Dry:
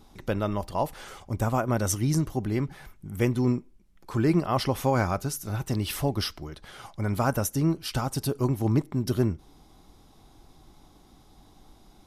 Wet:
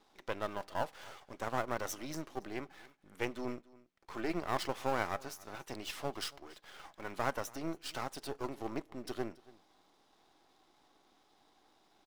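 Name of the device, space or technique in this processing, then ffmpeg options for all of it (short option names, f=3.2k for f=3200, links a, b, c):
crystal radio: -af "highpass=f=99:p=1,highpass=380,lowpass=3.4k,aeval=exprs='if(lt(val(0),0),0.251*val(0),val(0))':c=same,aemphasis=mode=production:type=50kf,aecho=1:1:280:0.0794,volume=-4.5dB"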